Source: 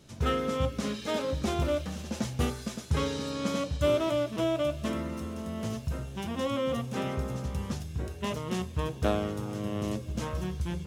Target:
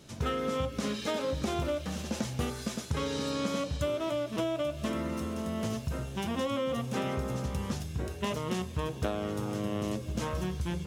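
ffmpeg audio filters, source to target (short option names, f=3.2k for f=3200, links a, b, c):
-af "lowshelf=f=120:g=-5,acompressor=threshold=-31dB:ratio=10,volume=3.5dB"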